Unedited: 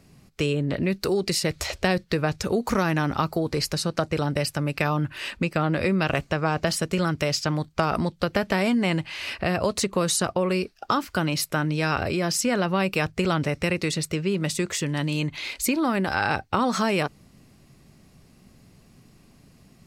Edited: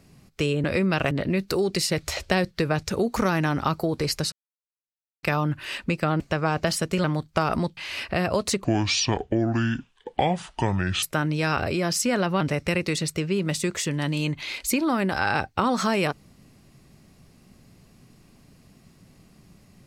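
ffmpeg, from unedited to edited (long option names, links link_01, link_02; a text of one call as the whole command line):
ffmpeg -i in.wav -filter_complex "[0:a]asplit=11[link_01][link_02][link_03][link_04][link_05][link_06][link_07][link_08][link_09][link_10][link_11];[link_01]atrim=end=0.642[link_12];[link_02]atrim=start=5.728:end=6.202[link_13];[link_03]atrim=start=0.638:end=3.85,asetpts=PTS-STARTPTS,afade=type=out:start_time=3.208:duration=0.004:curve=hsin[link_14];[link_04]atrim=start=3.85:end=4.76,asetpts=PTS-STARTPTS,volume=0[link_15];[link_05]atrim=start=4.76:end=5.732,asetpts=PTS-STARTPTS,afade=type=in:duration=0.004:curve=hsin[link_16];[link_06]atrim=start=6.198:end=7.042[link_17];[link_07]atrim=start=7.458:end=8.192[link_18];[link_08]atrim=start=9.068:end=9.944[link_19];[link_09]atrim=start=9.94:end=11.42,asetpts=PTS-STARTPTS,asetrate=27342,aresample=44100[link_20];[link_10]atrim=start=11.416:end=12.802[link_21];[link_11]atrim=start=13.358[link_22];[link_12][link_13]acrossfade=duration=0.004:curve1=hsin:curve2=hsin[link_23];[link_14][link_15][link_16]concat=n=3:v=0:a=1[link_24];[link_23][link_24]acrossfade=duration=0.004:curve1=hsin:curve2=hsin[link_25];[link_25][link_17]acrossfade=duration=0.004:curve1=hsin:curve2=hsin[link_26];[link_26][link_18]acrossfade=duration=0.004:curve1=hsin:curve2=hsin[link_27];[link_27][link_19]acrossfade=duration=0.004:curve1=hsin:curve2=hsin[link_28];[link_28][link_20]acrossfade=duration=0.004:curve1=hsin:curve2=hsin[link_29];[link_29][link_21]acrossfade=duration=0.004:curve1=hsin:curve2=hsin[link_30];[link_30][link_22]acrossfade=duration=0.004:curve1=hsin:curve2=hsin" out.wav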